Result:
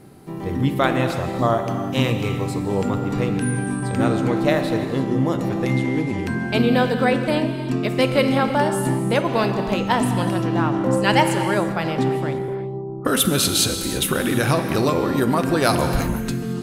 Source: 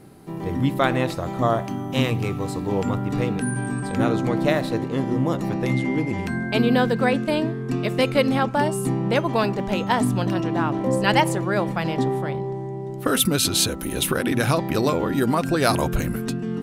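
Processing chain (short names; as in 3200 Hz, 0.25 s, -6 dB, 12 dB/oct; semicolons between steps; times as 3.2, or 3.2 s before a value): 12.48–13.05 steep low-pass 1300 Hz 96 dB/oct; non-linear reverb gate 0.37 s flat, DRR 6.5 dB; gain +1 dB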